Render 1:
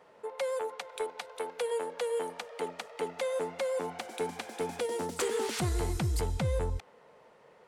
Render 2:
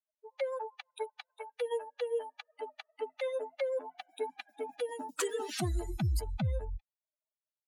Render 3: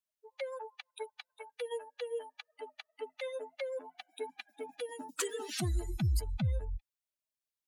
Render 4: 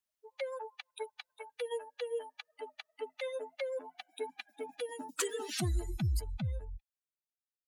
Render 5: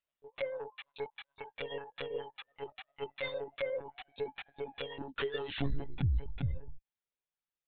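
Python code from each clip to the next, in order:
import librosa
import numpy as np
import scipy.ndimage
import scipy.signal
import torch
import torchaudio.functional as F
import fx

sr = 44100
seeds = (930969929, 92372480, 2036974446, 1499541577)

y1 = fx.bin_expand(x, sr, power=3.0)
y1 = y1 * 10.0 ** (3.0 / 20.0)
y2 = fx.peak_eq(y1, sr, hz=690.0, db=-7.0, octaves=2.1)
y2 = y2 * 10.0 ** (1.0 / 20.0)
y3 = fx.fade_out_tail(y2, sr, length_s=2.14)
y3 = y3 * 10.0 ** (1.0 / 20.0)
y4 = fx.lpc_monotone(y3, sr, seeds[0], pitch_hz=140.0, order=16)
y4 = y4 * 10.0 ** (1.5 / 20.0)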